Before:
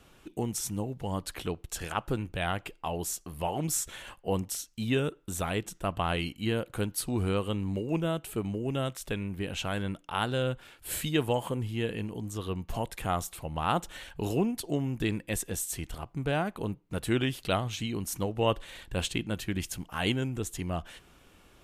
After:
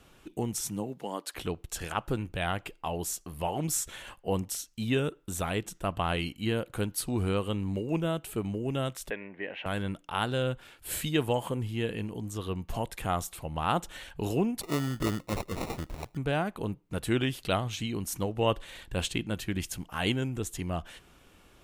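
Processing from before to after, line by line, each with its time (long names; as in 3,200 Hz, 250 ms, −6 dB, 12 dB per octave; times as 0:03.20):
0:00.67–0:01.34: high-pass filter 94 Hz → 380 Hz 24 dB per octave
0:09.10–0:09.66: loudspeaker in its box 380–2,500 Hz, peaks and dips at 590 Hz +5 dB, 1,300 Hz −7 dB, 1,900 Hz +10 dB
0:14.61–0:16.17: sample-rate reduction 1,600 Hz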